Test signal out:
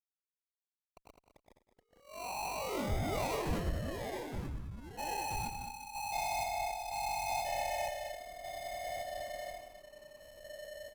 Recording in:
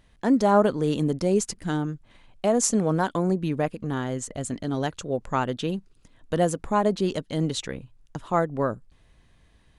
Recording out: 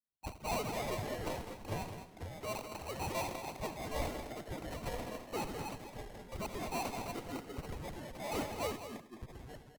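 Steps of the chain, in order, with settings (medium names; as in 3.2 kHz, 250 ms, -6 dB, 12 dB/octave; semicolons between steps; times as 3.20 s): formants replaced by sine waves; steep high-pass 760 Hz 48 dB/octave; treble shelf 3 kHz +10 dB; compression, threshold -27 dBFS; valve stage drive 38 dB, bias 0.4; sample-rate reducer 1.7 kHz, jitter 0%; multi-tap echo 85/168 ms -11/-16.5 dB; ever faster or slower copies 208 ms, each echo -3 st, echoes 2; delay 208 ms -6 dB; three bands expanded up and down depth 100%; trim +1 dB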